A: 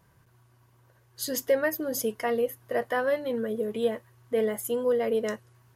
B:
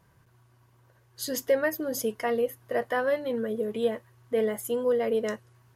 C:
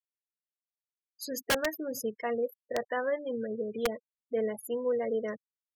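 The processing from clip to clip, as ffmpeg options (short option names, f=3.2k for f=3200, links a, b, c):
-af "highshelf=f=9.9k:g=-4"
-af "afftfilt=real='re*gte(hypot(re,im),0.0251)':imag='im*gte(hypot(re,im),0.0251)':win_size=1024:overlap=0.75,aeval=exprs='(mod(6.68*val(0)+1,2)-1)/6.68':c=same,volume=-4.5dB"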